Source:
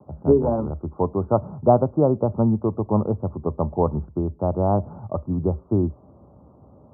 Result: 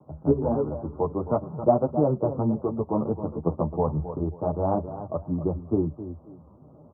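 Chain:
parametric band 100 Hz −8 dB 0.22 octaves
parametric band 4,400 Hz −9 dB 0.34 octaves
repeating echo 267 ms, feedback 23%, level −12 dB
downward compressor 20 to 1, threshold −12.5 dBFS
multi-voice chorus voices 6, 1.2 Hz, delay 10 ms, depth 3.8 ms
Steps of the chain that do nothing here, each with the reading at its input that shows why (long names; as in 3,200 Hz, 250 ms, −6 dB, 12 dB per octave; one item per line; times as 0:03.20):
parametric band 4,400 Hz: nothing at its input above 1,300 Hz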